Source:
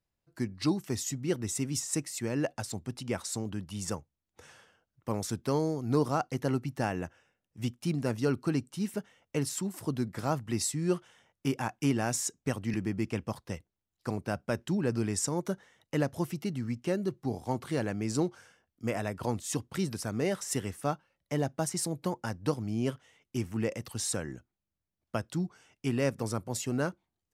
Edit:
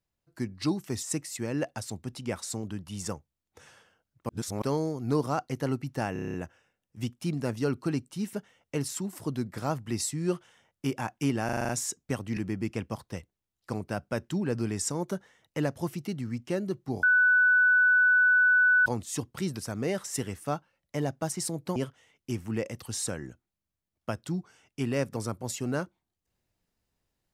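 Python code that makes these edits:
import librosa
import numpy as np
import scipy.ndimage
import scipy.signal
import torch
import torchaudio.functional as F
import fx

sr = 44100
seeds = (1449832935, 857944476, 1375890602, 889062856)

y = fx.edit(x, sr, fx.cut(start_s=1.03, length_s=0.82),
    fx.reverse_span(start_s=5.11, length_s=0.33),
    fx.stutter(start_s=6.95, slice_s=0.03, count=8),
    fx.stutter(start_s=12.06, slice_s=0.04, count=7),
    fx.bleep(start_s=17.4, length_s=1.83, hz=1490.0, db=-18.0),
    fx.cut(start_s=22.13, length_s=0.69), tone=tone)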